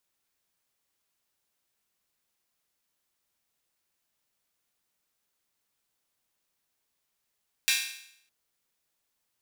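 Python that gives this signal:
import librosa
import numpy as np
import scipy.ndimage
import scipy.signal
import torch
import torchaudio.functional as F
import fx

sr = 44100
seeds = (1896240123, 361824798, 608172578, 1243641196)

y = fx.drum_hat_open(sr, length_s=0.61, from_hz=2300.0, decay_s=0.7)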